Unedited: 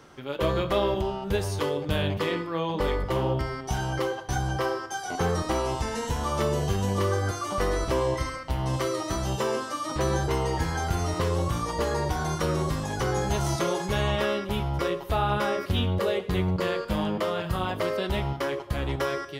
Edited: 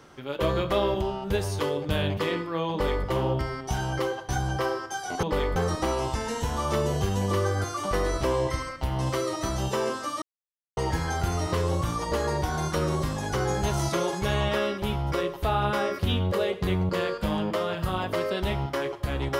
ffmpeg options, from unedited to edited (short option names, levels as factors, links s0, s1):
-filter_complex "[0:a]asplit=5[s0][s1][s2][s3][s4];[s0]atrim=end=5.232[s5];[s1]atrim=start=2.708:end=3.042[s6];[s2]atrim=start=5.228:end=9.89,asetpts=PTS-STARTPTS,afade=t=out:st=4.658:d=0.004:c=hsin[s7];[s3]atrim=start=9.89:end=10.44,asetpts=PTS-STARTPTS,volume=0[s8];[s4]atrim=start=10.44,asetpts=PTS-STARTPTS,afade=t=in:d=0.004:c=hsin[s9];[s5][s6]acrossfade=d=0.004:c1=hsin:c2=hsin[s10];[s7][s8][s9]concat=n=3:v=0:a=1[s11];[s10][s11]acrossfade=d=0.004:c1=hsin:c2=hsin"